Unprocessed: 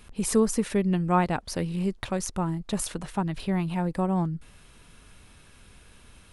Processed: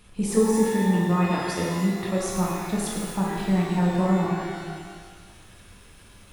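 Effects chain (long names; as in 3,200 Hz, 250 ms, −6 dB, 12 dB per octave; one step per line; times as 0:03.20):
output level in coarse steps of 9 dB
0:00.44–0:02.20: notch comb filter 770 Hz
reverb with rising layers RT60 1.6 s, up +12 semitones, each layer −8 dB, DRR −4 dB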